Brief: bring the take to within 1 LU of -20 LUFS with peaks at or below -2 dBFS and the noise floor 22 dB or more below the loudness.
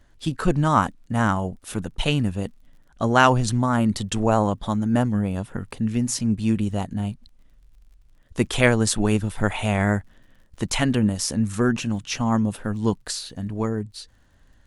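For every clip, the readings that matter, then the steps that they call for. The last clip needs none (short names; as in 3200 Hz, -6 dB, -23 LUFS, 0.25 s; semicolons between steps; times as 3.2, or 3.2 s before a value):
ticks 41/s; loudness -23.0 LUFS; peak -2.5 dBFS; loudness target -20.0 LUFS
-> de-click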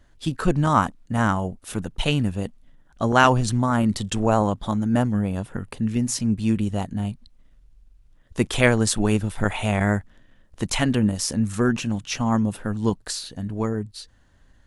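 ticks 0/s; loudness -23.5 LUFS; peak -2.5 dBFS; loudness target -20.0 LUFS
-> gain +3.5 dB; limiter -2 dBFS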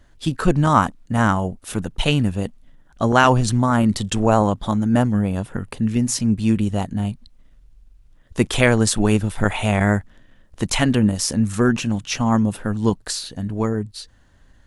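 loudness -20.0 LUFS; peak -2.0 dBFS; noise floor -53 dBFS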